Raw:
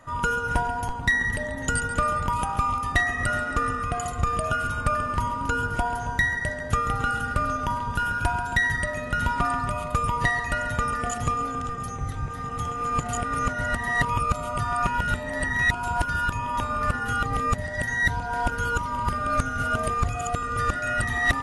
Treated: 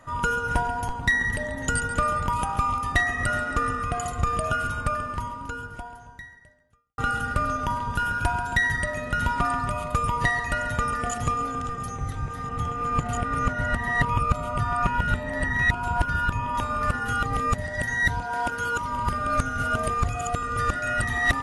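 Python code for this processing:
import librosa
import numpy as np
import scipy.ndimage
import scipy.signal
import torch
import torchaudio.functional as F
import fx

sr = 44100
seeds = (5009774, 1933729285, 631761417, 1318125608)

y = fx.bass_treble(x, sr, bass_db=3, treble_db=-6, at=(12.49, 16.55))
y = fx.highpass(y, sr, hz=220.0, slope=6, at=(18.22, 18.83))
y = fx.edit(y, sr, fx.fade_out_span(start_s=4.61, length_s=2.37, curve='qua'), tone=tone)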